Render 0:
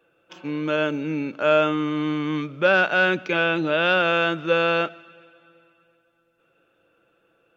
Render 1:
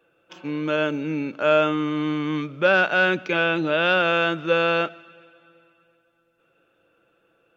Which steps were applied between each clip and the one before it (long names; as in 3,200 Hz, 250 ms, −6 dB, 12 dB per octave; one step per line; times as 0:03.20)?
no processing that can be heard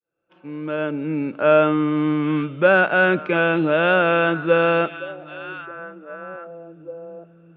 fade in at the beginning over 1.47 s
high-frequency loss of the air 490 metres
echo through a band-pass that steps 793 ms, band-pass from 3,500 Hz, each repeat −1.4 octaves, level −11 dB
level +5.5 dB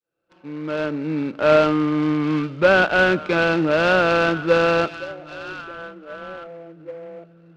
short delay modulated by noise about 1,300 Hz, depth 0.031 ms